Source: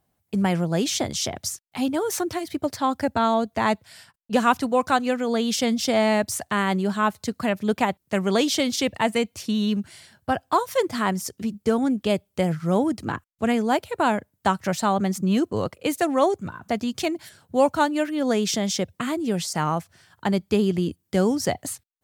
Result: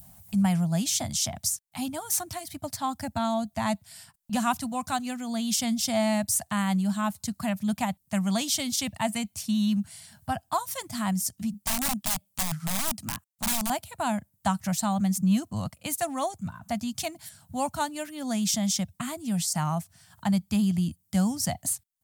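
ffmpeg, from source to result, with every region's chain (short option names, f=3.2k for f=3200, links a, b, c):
-filter_complex "[0:a]asettb=1/sr,asplit=3[a][b][c];[a]atrim=end=11.544[d];[b]atrim=start=11.54:end=13.7,asetpts=PTS-STARTPTS,afade=t=in:d=0.004:c=qsin,afade=t=out:st=2.156:d=0.004:c=qsin,highpass=f=190:p=1,aeval=exprs='(mod(10*val(0)+1,2)-1)/10':c=same[e];[c]atrim=start=13.696[f];[d][e]acrossfade=d=0.004:c1=hsin:c2=qsin[g];[g][f]acrossfade=d=0.004:c1=qsin:c2=hsin,adynamicequalizer=threshold=0.0224:dfrequency=1100:dqfactor=0.82:tfrequency=1100:tqfactor=0.82:attack=5:release=100:ratio=0.375:range=2.5:mode=cutabove:tftype=bell,acompressor=mode=upward:threshold=-35dB:ratio=2.5,firequalizer=gain_entry='entry(200,0);entry(420,-28);entry(660,-4);entry(1500,-8);entry(8600,5)':delay=0.05:min_phase=1"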